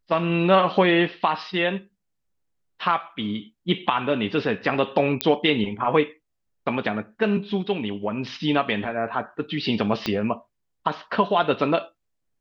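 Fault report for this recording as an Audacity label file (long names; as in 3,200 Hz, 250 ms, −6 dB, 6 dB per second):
5.210000	5.210000	click −4 dBFS
10.060000	10.060000	click −11 dBFS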